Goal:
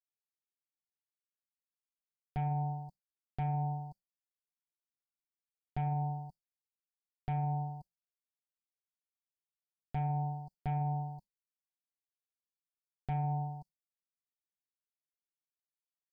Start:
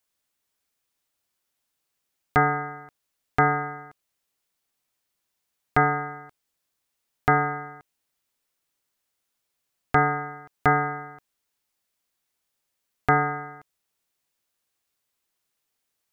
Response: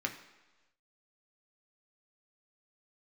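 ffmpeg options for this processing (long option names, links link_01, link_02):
-af "asuperstop=centerf=2100:order=20:qfactor=0.56,aecho=1:1:5.4:0.72,acontrast=53,agate=range=-33dB:threshold=-40dB:ratio=3:detection=peak,firequalizer=gain_entry='entry(180,0);entry(390,-20);entry(550,-14);entry(3200,12);entry(5600,-17)':delay=0.05:min_phase=1,alimiter=level_in=3dB:limit=-24dB:level=0:latency=1:release=72,volume=-3dB"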